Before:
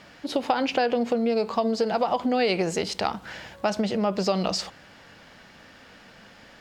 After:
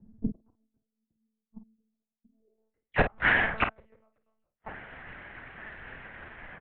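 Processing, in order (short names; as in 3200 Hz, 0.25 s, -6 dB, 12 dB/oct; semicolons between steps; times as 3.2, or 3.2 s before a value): spectral delay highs early, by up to 0.129 s; flipped gate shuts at -20 dBFS, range -38 dB; in parallel at -6.5 dB: requantised 8-bit, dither none; on the sum: low-pass sweep 180 Hz -> 2000 Hz, 2.28–2.81; monotone LPC vocoder at 8 kHz 220 Hz; on a send: early reflections 31 ms -14.5 dB, 50 ms -9.5 dB; on the sum: three-band expander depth 100%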